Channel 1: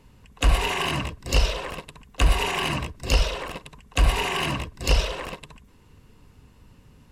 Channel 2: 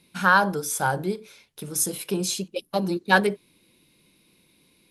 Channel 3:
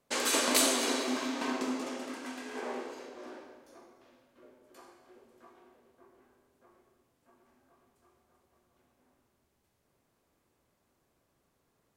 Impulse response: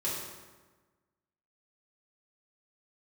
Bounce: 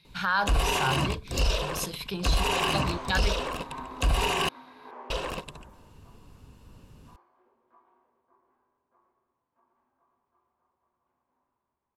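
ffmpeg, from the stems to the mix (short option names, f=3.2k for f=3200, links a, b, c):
-filter_complex "[0:a]equalizer=f=2k:t=o:w=0.35:g=-7.5,adelay=50,volume=0.5dB,asplit=3[a][b][c];[a]atrim=end=4.49,asetpts=PTS-STARTPTS,afade=t=out:st=4.486:d=0.004:c=hsin[d];[b]atrim=start=4.49:end=5.1,asetpts=PTS-STARTPTS,volume=0[e];[c]atrim=start=5.1,asetpts=PTS-STARTPTS,afade=t=in:d=0.004:c=hsin[f];[d][e][f]concat=n=3:v=0:a=1[g];[1:a]equalizer=f=125:t=o:w=1:g=11,equalizer=f=250:t=o:w=1:g=-10,equalizer=f=500:t=o:w=1:g=-3,equalizer=f=1k:t=o:w=1:g=4,equalizer=f=2k:t=o:w=1:g=4,equalizer=f=4k:t=o:w=1:g=10,equalizer=f=8k:t=o:w=1:g=-7,equalizer=f=10k:w=6.9:g=-14,volume=-5.5dB[h];[2:a]lowpass=2.7k,equalizer=f=990:w=2.3:g=14.5,adelay=2300,volume=-12dB[i];[g][h][i]amix=inputs=3:normalize=0,alimiter=limit=-15.5dB:level=0:latency=1:release=27"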